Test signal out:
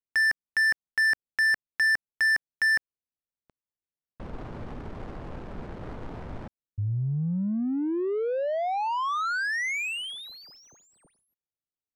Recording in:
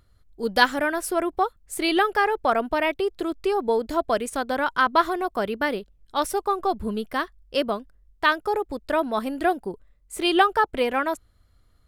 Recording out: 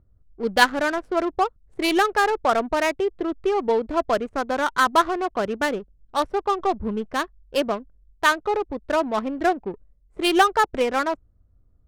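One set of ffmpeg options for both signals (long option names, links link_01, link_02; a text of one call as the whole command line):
ffmpeg -i in.wav -af "adynamicsmooth=sensitivity=3:basefreq=560,volume=1.5dB" out.wav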